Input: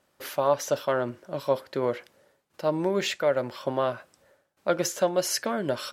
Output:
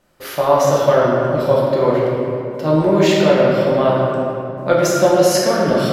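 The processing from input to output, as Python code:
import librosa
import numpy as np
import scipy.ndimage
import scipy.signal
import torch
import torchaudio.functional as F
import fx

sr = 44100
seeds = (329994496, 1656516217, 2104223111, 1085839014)

y = fx.low_shelf(x, sr, hz=180.0, db=8.5)
y = fx.room_shoebox(y, sr, seeds[0], volume_m3=120.0, walls='hard', distance_m=0.79)
y = y * 10.0 ** (4.0 / 20.0)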